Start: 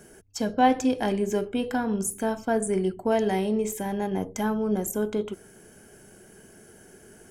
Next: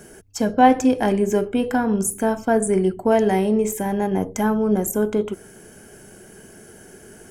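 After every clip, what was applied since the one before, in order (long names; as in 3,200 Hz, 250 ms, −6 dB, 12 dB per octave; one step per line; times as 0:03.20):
dynamic equaliser 3,900 Hz, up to −7 dB, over −53 dBFS, Q 1.4
level +6.5 dB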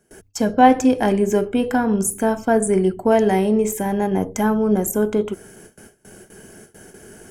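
noise gate with hold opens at −34 dBFS
level +1.5 dB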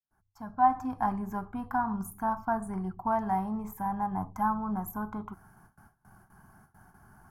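fade in at the beginning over 1.03 s
drawn EQ curve 130 Hz 0 dB, 300 Hz −13 dB, 500 Hz −28 dB, 760 Hz +1 dB, 1,100 Hz +8 dB, 1,700 Hz −9 dB, 2,900 Hz −24 dB, 4,600 Hz −16 dB, 8,100 Hz −25 dB, 13,000 Hz −6 dB
level −6.5 dB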